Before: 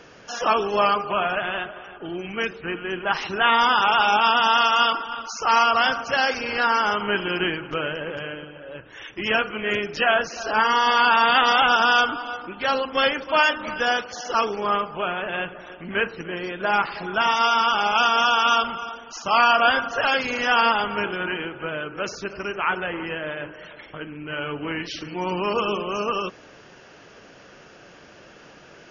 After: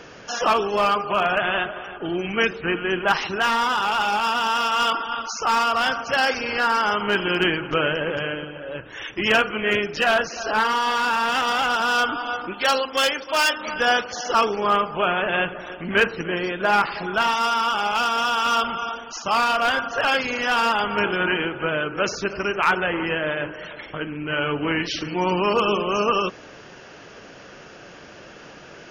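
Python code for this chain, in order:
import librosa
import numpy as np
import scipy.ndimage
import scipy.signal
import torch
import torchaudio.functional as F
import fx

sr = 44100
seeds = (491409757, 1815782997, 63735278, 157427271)

y = np.clip(x, -10.0 ** (-14.5 / 20.0), 10.0 ** (-14.5 / 20.0))
y = fx.bass_treble(y, sr, bass_db=-8, treble_db=11, at=(12.54, 13.74))
y = fx.rider(y, sr, range_db=4, speed_s=0.5)
y = F.gain(torch.from_numpy(y), 1.5).numpy()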